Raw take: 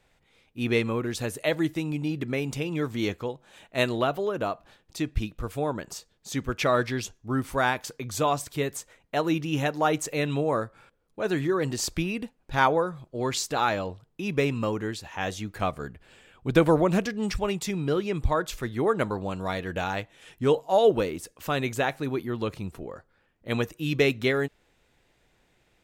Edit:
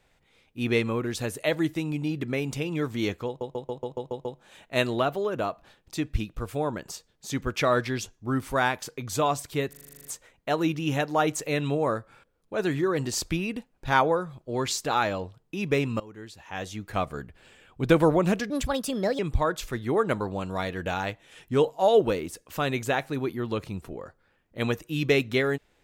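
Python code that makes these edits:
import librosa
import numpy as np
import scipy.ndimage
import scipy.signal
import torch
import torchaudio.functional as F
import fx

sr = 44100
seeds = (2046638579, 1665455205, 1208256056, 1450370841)

y = fx.edit(x, sr, fx.stutter(start_s=3.27, slice_s=0.14, count=8),
    fx.stutter(start_s=8.71, slice_s=0.04, count=10),
    fx.fade_in_from(start_s=14.66, length_s=1.01, floor_db=-21.5),
    fx.speed_span(start_s=17.16, length_s=0.93, speed=1.35), tone=tone)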